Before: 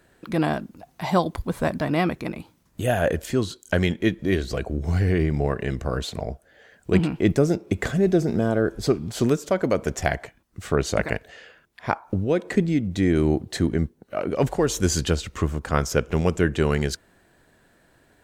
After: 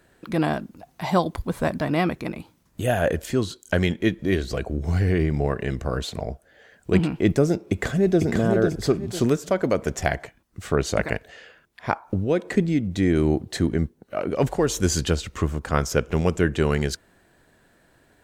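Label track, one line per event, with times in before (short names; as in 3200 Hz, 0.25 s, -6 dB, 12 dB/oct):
7.630000	8.250000	echo throw 0.5 s, feedback 30%, level -4 dB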